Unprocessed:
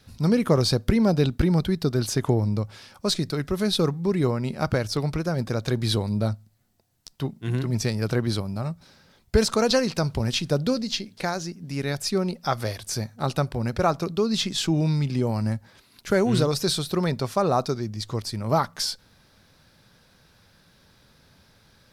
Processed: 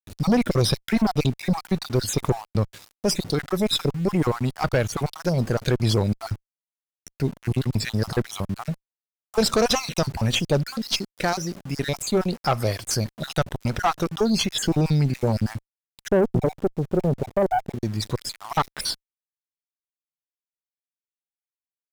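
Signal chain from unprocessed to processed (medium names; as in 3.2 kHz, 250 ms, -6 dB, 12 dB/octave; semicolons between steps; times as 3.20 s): random holes in the spectrogram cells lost 42%; 16.08–17.83 s: steep low-pass 820 Hz 96 dB/octave; small samples zeroed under -43 dBFS; valve stage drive 21 dB, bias 0.5; trim +7.5 dB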